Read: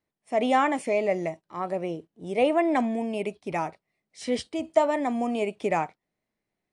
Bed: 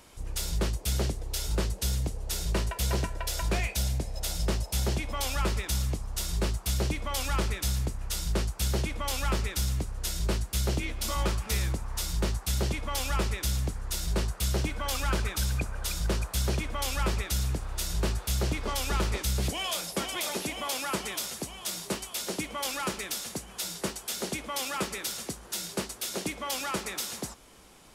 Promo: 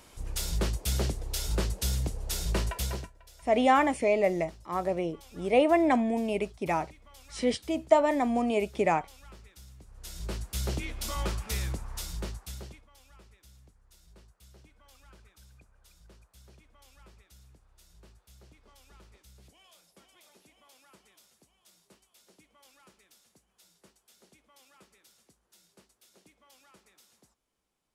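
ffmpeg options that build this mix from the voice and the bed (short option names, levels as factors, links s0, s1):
-filter_complex "[0:a]adelay=3150,volume=1[s0];[1:a]volume=8.41,afade=t=out:st=2.72:d=0.4:silence=0.0794328,afade=t=in:st=9.79:d=0.86:silence=0.112202,afade=t=out:st=11.78:d=1.09:silence=0.0595662[s1];[s0][s1]amix=inputs=2:normalize=0"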